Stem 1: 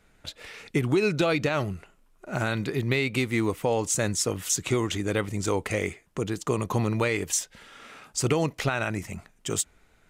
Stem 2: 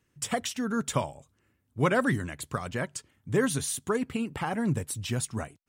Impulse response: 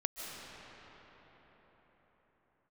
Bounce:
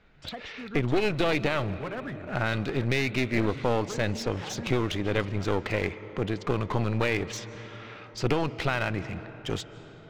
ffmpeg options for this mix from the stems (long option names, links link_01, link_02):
-filter_complex "[0:a]volume=0dB,asplit=2[link_01][link_02];[link_02]volume=-15dB[link_03];[1:a]volume=-10.5dB[link_04];[2:a]atrim=start_sample=2205[link_05];[link_03][link_05]afir=irnorm=-1:irlink=0[link_06];[link_01][link_04][link_06]amix=inputs=3:normalize=0,lowpass=frequency=4400:width=0.5412,lowpass=frequency=4400:width=1.3066,aeval=exprs='clip(val(0),-1,0.0251)':channel_layout=same"